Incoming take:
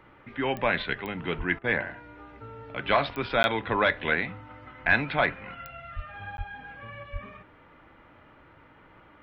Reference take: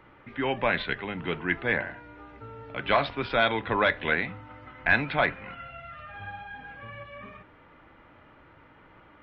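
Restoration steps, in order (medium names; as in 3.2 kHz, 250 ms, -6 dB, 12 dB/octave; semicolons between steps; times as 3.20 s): de-click; de-plosive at 1.37/5.95/6.37/7.12 s; interpolate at 3.43/6.37 s, 11 ms; interpolate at 1.59 s, 49 ms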